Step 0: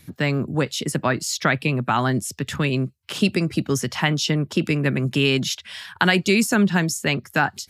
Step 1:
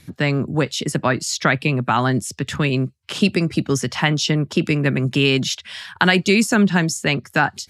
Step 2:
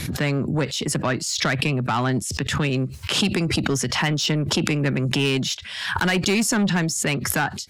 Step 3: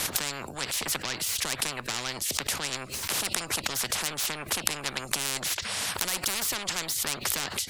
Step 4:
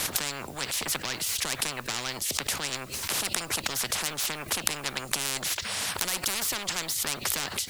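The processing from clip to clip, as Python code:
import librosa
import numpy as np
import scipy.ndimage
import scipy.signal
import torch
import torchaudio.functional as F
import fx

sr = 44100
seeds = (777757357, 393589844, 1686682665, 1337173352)

y1 = scipy.signal.sosfilt(scipy.signal.butter(2, 9800.0, 'lowpass', fs=sr, output='sos'), x)
y1 = y1 * 10.0 ** (2.5 / 20.0)
y2 = 10.0 ** (-14.0 / 20.0) * np.tanh(y1 / 10.0 ** (-14.0 / 20.0))
y2 = fx.pre_swell(y2, sr, db_per_s=45.0)
y2 = y2 * 10.0 ** (-1.5 / 20.0)
y3 = fx.spectral_comp(y2, sr, ratio=10.0)
y4 = fx.dmg_noise_colour(y3, sr, seeds[0], colour='white', level_db=-53.0)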